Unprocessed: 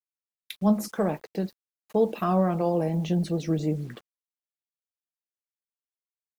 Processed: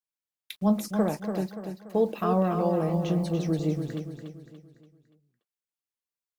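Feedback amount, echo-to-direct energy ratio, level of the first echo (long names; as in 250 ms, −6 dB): 43%, −6.0 dB, −7.0 dB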